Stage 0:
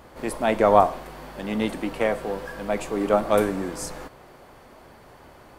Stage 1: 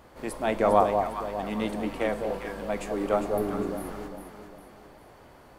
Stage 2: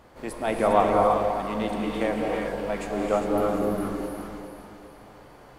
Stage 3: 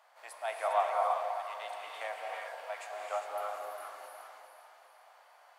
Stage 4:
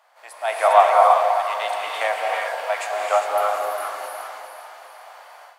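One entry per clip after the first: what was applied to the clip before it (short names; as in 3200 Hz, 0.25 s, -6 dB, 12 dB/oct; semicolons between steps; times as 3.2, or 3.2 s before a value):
spectral repair 3.3–4, 490–9500 Hz; echo with dull and thin repeats by turns 0.201 s, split 930 Hz, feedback 64%, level -4 dB; gain -5 dB
high shelf 12000 Hz -5 dB; non-linear reverb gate 0.37 s rising, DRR 0.5 dB
Chebyshev high-pass 660 Hz, order 4; gain -7 dB
AGC gain up to 12 dB; gain +4.5 dB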